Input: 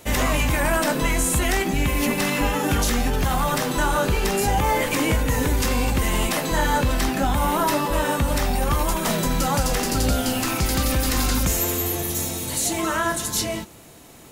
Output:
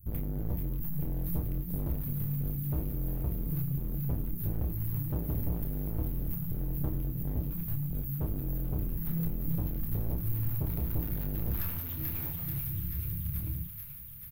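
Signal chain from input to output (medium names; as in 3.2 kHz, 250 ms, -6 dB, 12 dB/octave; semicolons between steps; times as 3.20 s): inverse Chebyshev band-stop 470–7200 Hz, stop band 60 dB; peaking EQ 280 Hz -6 dB 1.6 oct; small resonant body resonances 390/910/1800/3800 Hz, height 10 dB, ringing for 30 ms; hard clipper -34 dBFS, distortion -4 dB; doubling 29 ms -5.5 dB; feedback echo behind a high-pass 436 ms, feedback 72%, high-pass 1.8 kHz, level -4 dB; reverberation RT60 0.30 s, pre-delay 7 ms, DRR 8 dB; trim +3 dB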